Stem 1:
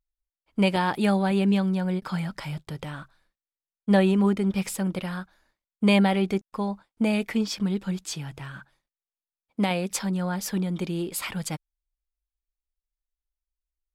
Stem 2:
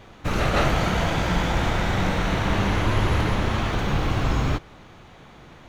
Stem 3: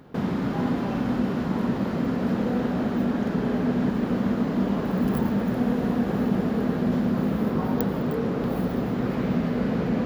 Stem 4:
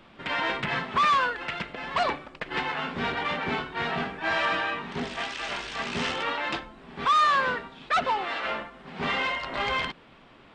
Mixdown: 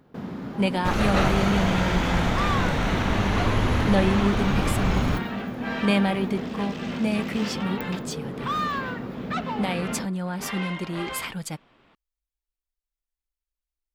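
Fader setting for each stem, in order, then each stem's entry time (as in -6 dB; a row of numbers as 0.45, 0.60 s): -2.0, -1.5, -8.0, -6.5 dB; 0.00, 0.60, 0.00, 1.40 s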